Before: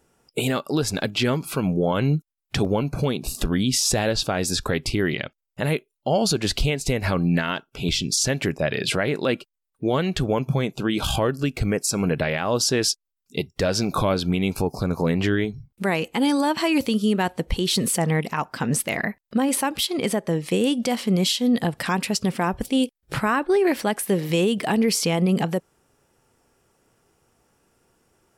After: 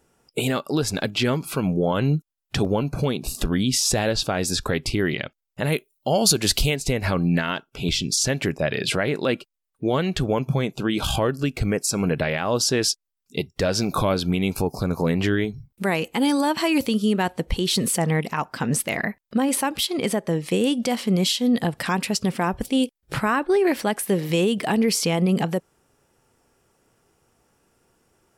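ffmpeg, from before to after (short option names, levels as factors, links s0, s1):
-filter_complex "[0:a]asettb=1/sr,asplit=3[s0][s1][s2];[s0]atrim=end=1.884[s3];[s1]atrim=start=1.88:end=2.98,asetpts=PTS-STARTPTS,afade=t=in:d=0.004:c=qsin,afade=t=out:st=1.096:d=0.004:c=qsin,bandreject=f=2200:w=12[s4];[s2]atrim=start=2.976[s5];[s3][s4]acrossfade=d=0.004:c1=hsin:c2=qsin[s6];[s6][s5]acrossfade=d=0.004:c1=qsin:c2=hsin,asettb=1/sr,asplit=3[s7][s8][s9];[s7]atrim=end=5.724[s10];[s8]atrim=start=5.72:end=6.76,asetpts=PTS-STARTPTS,afade=t=in:d=0.004:c=qsin,afade=t=out:st=1.036:d=0.004:c=qsin,aemphasis=mode=production:type=50kf[s11];[s9]atrim=start=6.756[s12];[s10][s11]acrossfade=d=0.004:c1=hsin:c2=qsin[s13];[s13][s12]acrossfade=d=0.004:c1=qsin:c2=hsin,asettb=1/sr,asplit=3[s14][s15][s16];[s14]atrim=end=13.784[s17];[s15]atrim=start=13.78:end=16.87,asetpts=PTS-STARTPTS,afade=t=in:d=0.004:c=qsin,afade=t=out:st=3.086:d=0.004:c=qsin,highshelf=f=12000:g=7[s18];[s16]atrim=start=16.866[s19];[s17][s18]acrossfade=d=0.004:c1=hsin:c2=qsin[s20];[s20][s19]acrossfade=d=0.004:c1=qsin:c2=hsin"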